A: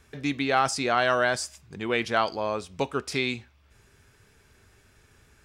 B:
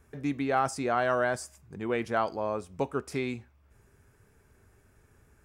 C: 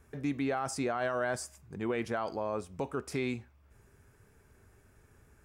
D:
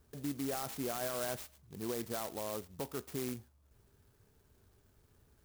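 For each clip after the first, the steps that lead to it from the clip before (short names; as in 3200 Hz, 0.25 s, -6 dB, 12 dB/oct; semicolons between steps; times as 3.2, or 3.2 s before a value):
bell 3800 Hz -13.5 dB 1.8 oct; gain -1.5 dB
limiter -23.5 dBFS, peak gain reduction 9.5 dB
clock jitter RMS 0.12 ms; gain -5.5 dB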